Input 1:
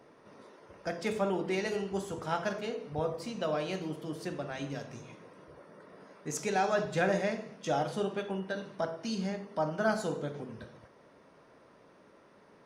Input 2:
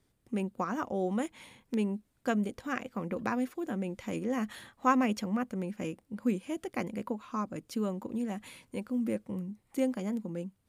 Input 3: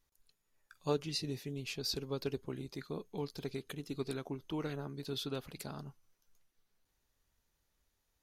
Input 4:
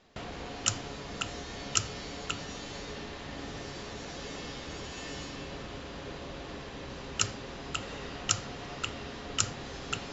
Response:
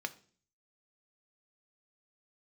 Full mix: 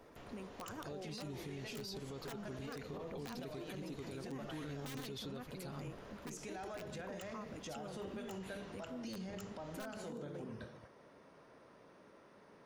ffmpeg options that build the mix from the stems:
-filter_complex "[0:a]acompressor=threshold=-37dB:ratio=6,volume=-2dB[a];[1:a]lowshelf=f=120:t=q:w=3:g=8.5,volume=-7.5dB[b];[2:a]aecho=1:1:7.3:0.65,volume=0.5dB[c];[3:a]equalizer=f=4.6k:w=1.5:g=-5,volume=-14.5dB[d];[b][d]amix=inputs=2:normalize=0,aeval=exprs='(mod(31.6*val(0)+1,2)-1)/31.6':c=same,acompressor=threshold=-44dB:ratio=6,volume=0dB[e];[a][c]amix=inputs=2:normalize=0,alimiter=level_in=10dB:limit=-24dB:level=0:latency=1:release=234,volume=-10dB,volume=0dB[f];[e][f]amix=inputs=2:normalize=0,alimiter=level_in=13.5dB:limit=-24dB:level=0:latency=1:release=18,volume=-13.5dB"

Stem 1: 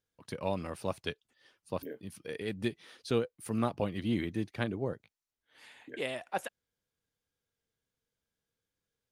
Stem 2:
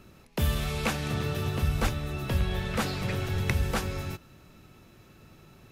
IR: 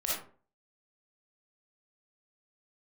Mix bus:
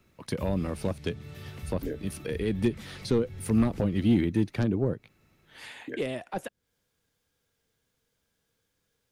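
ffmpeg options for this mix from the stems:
-filter_complex "[0:a]aeval=exprs='0.2*sin(PI/2*2.24*val(0)/0.2)':c=same,volume=0dB[a];[1:a]equalizer=f=2.1k:t=o:w=0.3:g=9,acrossover=split=230|3000[b][c][d];[c]acompressor=threshold=-36dB:ratio=6[e];[b][e][d]amix=inputs=3:normalize=0,volume=-12dB[f];[a][f]amix=inputs=2:normalize=0,acrossover=split=410[g][h];[h]acompressor=threshold=-38dB:ratio=4[i];[g][i]amix=inputs=2:normalize=0"

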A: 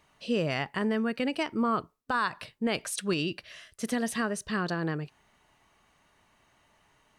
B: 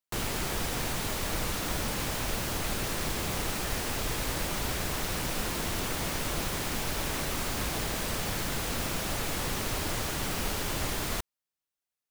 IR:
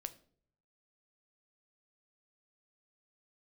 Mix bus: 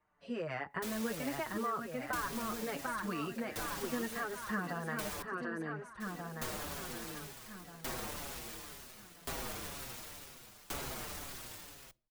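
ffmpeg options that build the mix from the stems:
-filter_complex "[0:a]highshelf=f=2.3k:t=q:w=1.5:g=-11.5,dynaudnorm=f=160:g=3:m=11dB,volume=-10.5dB,asplit=2[a][b];[b]volume=-5.5dB[c];[1:a]aeval=exprs='(mod(22.4*val(0)+1,2)-1)/22.4':c=same,aeval=exprs='val(0)*pow(10,-27*if(lt(mod(0.7*n/s,1),2*abs(0.7)/1000),1-mod(0.7*n/s,1)/(2*abs(0.7)/1000),(mod(0.7*n/s,1)-2*abs(0.7)/1000)/(1-2*abs(0.7)/1000))/20)':c=same,adelay=700,volume=0.5dB,asplit=3[d][e][f];[d]atrim=end=5.22,asetpts=PTS-STARTPTS,afade=t=out:st=5.216:d=0.004:c=hsin[g];[e]atrim=start=5.22:end=6,asetpts=PTS-STARTPTS,volume=0[h];[f]atrim=start=6,asetpts=PTS-STARTPTS,afade=t=in:d=0.004:c=hsin[i];[g][h][i]concat=n=3:v=0:a=1,asplit=2[j][k];[k]volume=-6.5dB[l];[2:a]atrim=start_sample=2205[m];[l][m]afir=irnorm=-1:irlink=0[n];[c]aecho=0:1:742|1484|2226|2968|3710|4452|5194|5936:1|0.55|0.303|0.166|0.0915|0.0503|0.0277|0.0152[o];[a][j][n][o]amix=inputs=4:normalize=0,acrossover=split=290|1500[p][q][r];[p]acompressor=threshold=-42dB:ratio=4[s];[q]acompressor=threshold=-36dB:ratio=4[t];[r]acompressor=threshold=-39dB:ratio=4[u];[s][t][u]amix=inputs=3:normalize=0,asplit=2[v][w];[w]adelay=6,afreqshift=-2[x];[v][x]amix=inputs=2:normalize=1"

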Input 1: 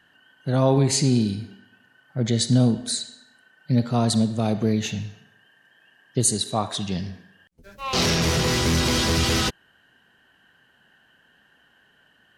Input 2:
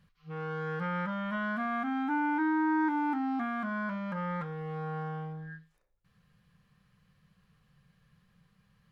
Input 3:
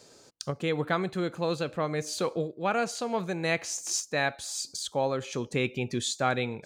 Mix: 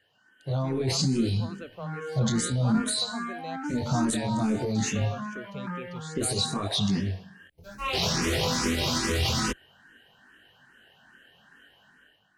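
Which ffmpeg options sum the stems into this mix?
-filter_complex "[0:a]alimiter=limit=-17dB:level=0:latency=1:release=20,volume=-2.5dB[a];[1:a]acompressor=threshold=-44dB:ratio=3,adelay=1550,volume=2dB[b];[2:a]highshelf=f=8.4k:g=-12,volume=-19.5dB,asplit=2[c][d];[d]apad=whole_len=461433[e];[b][e]sidechaingate=range=-33dB:threshold=-59dB:ratio=16:detection=peak[f];[a][f]amix=inputs=2:normalize=0,flanger=delay=20:depth=3.4:speed=0.58,alimiter=level_in=2.5dB:limit=-24dB:level=0:latency=1:release=11,volume=-2.5dB,volume=0dB[g];[c][g]amix=inputs=2:normalize=0,dynaudnorm=f=120:g=9:m=11dB,asplit=2[h][i];[i]afreqshift=2.4[j];[h][j]amix=inputs=2:normalize=1"

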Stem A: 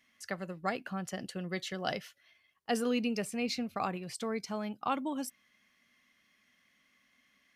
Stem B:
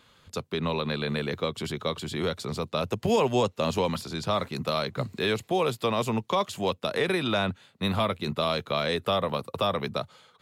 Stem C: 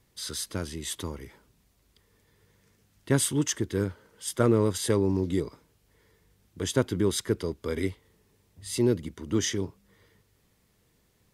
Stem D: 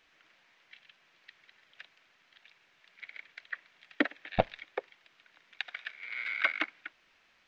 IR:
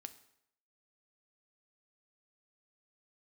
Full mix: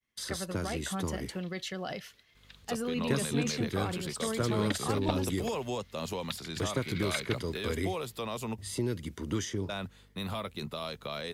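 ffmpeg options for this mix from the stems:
-filter_complex "[0:a]alimiter=level_in=4.5dB:limit=-24dB:level=0:latency=1:release=40,volume=-4.5dB,volume=2dB[a];[1:a]highshelf=f=6.4k:g=9.5,alimiter=limit=-18.5dB:level=0:latency=1:release=111,aeval=exprs='val(0)+0.00251*(sin(2*PI*50*n/s)+sin(2*PI*2*50*n/s)/2+sin(2*PI*3*50*n/s)/3+sin(2*PI*4*50*n/s)/4+sin(2*PI*5*50*n/s)/5)':c=same,adelay=2350,volume=-7.5dB,asplit=3[b][c][d];[b]atrim=end=8.58,asetpts=PTS-STARTPTS,afade=t=out:st=8.576:d=0.004:c=hsin[e];[c]atrim=start=8.58:end=9.69,asetpts=PTS-STARTPTS,volume=0[f];[d]atrim=start=9.69,asetpts=PTS-STARTPTS,afade=t=in:d=0.004:c=hsin[g];[e][f][g]concat=n=3:v=0:a=1[h];[2:a]agate=range=-8dB:threshold=-55dB:ratio=16:detection=peak,acrossover=split=160|1200[i][j][k];[i]acompressor=threshold=-38dB:ratio=4[l];[j]acompressor=threshold=-36dB:ratio=4[m];[k]acompressor=threshold=-42dB:ratio=4[n];[l][m][n]amix=inputs=3:normalize=0,volume=2.5dB[o];[3:a]highshelf=f=3k:t=q:w=1.5:g=9.5,adelay=700,volume=-7dB[p];[a][h][o][p]amix=inputs=4:normalize=0,agate=range=-33dB:threshold=-55dB:ratio=3:detection=peak"

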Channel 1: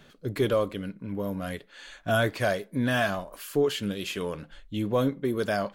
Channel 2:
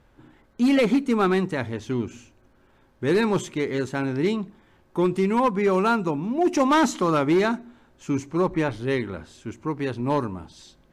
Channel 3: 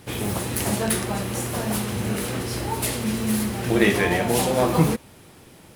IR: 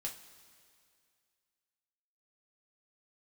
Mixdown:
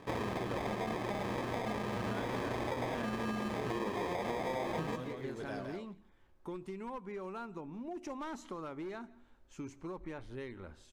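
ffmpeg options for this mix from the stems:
-filter_complex "[0:a]lowpass=7.8k,volume=-9.5dB,asplit=2[a][b];[b]volume=-13dB[c];[1:a]asubboost=boost=5:cutoff=56,acompressor=threshold=-27dB:ratio=6,adynamicequalizer=threshold=0.00631:dfrequency=2200:dqfactor=0.7:tfrequency=2200:tqfactor=0.7:attack=5:release=100:ratio=0.375:range=2:mode=cutabove:tftype=highshelf,adelay=1500,volume=-13dB,asplit=2[d][e];[e]volume=-24dB[f];[2:a]acrusher=samples=31:mix=1:aa=0.000001,asplit=2[g][h];[h]highpass=f=720:p=1,volume=13dB,asoftclip=type=tanh:threshold=-5.5dB[i];[g][i]amix=inputs=2:normalize=0,lowpass=f=1.5k:p=1,volume=-6dB,volume=0dB,asplit=2[j][k];[k]volume=-21.5dB[l];[a][j]amix=inputs=2:normalize=0,agate=range=-7dB:threshold=-29dB:ratio=16:detection=peak,acompressor=threshold=-24dB:ratio=6,volume=0dB[m];[c][f][l]amix=inputs=3:normalize=0,aecho=0:1:169:1[n];[d][m][n]amix=inputs=3:normalize=0,acompressor=threshold=-34dB:ratio=5"

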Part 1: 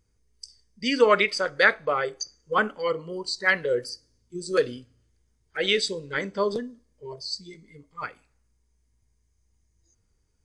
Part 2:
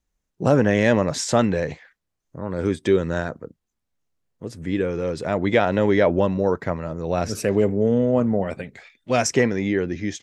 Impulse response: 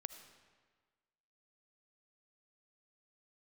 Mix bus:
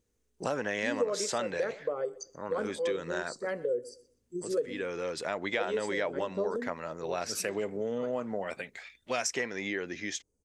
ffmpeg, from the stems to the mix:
-filter_complex "[0:a]equalizer=f=250:t=o:w=1:g=8,equalizer=f=500:t=o:w=1:g=12,equalizer=f=2k:t=o:w=1:g=-8,equalizer=f=4k:t=o:w=1:g=-10,equalizer=f=8k:t=o:w=1:g=10,volume=-11dB,asplit=2[a][b];[b]volume=-22.5dB[c];[1:a]highpass=f=1.2k:p=1,volume=0.5dB[d];[c]aecho=0:1:124|248|372:1|0.2|0.04[e];[a][d][e]amix=inputs=3:normalize=0,acompressor=threshold=-30dB:ratio=3"

